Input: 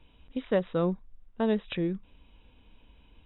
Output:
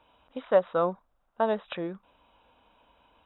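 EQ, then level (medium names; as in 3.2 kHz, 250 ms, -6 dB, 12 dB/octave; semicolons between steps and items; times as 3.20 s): high-pass 80 Hz 6 dB/octave; tone controls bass -7 dB, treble +2 dB; high-order bell 910 Hz +11 dB; -2.5 dB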